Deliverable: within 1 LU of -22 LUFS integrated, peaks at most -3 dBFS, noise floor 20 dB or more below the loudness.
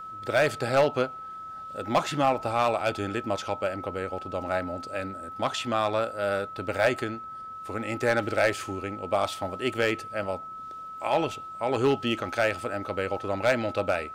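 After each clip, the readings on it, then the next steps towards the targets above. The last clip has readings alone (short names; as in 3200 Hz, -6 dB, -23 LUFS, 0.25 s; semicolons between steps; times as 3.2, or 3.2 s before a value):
clipped 0.4%; flat tops at -15.0 dBFS; steady tone 1300 Hz; tone level -37 dBFS; loudness -28.0 LUFS; peak -15.0 dBFS; loudness target -22.0 LUFS
-> clip repair -15 dBFS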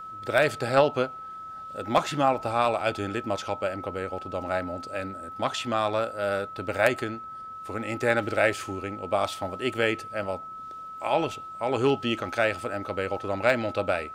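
clipped 0.0%; steady tone 1300 Hz; tone level -37 dBFS
-> notch 1300 Hz, Q 30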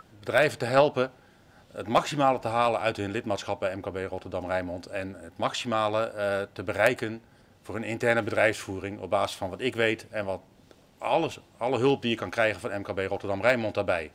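steady tone none; loudness -27.5 LUFS; peak -5.5 dBFS; loudness target -22.0 LUFS
-> gain +5.5 dB; limiter -3 dBFS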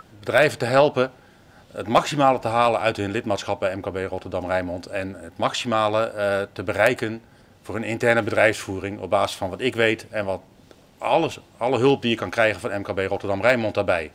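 loudness -22.5 LUFS; peak -3.0 dBFS; noise floor -52 dBFS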